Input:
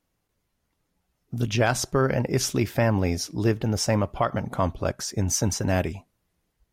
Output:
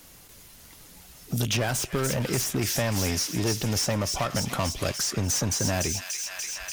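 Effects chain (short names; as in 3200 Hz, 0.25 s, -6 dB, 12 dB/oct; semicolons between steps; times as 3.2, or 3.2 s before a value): in parallel at -4.5 dB: hard clip -23 dBFS, distortion -8 dB; on the sum: high shelf 2700 Hz +11.5 dB; soft clip -17.5 dBFS, distortion -10 dB; thin delay 0.292 s, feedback 63%, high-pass 2200 Hz, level -6 dB; 1.58–2.62 dynamic EQ 4400 Hz, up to -7 dB, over -35 dBFS, Q 0.71; three-band squash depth 70%; gain -4 dB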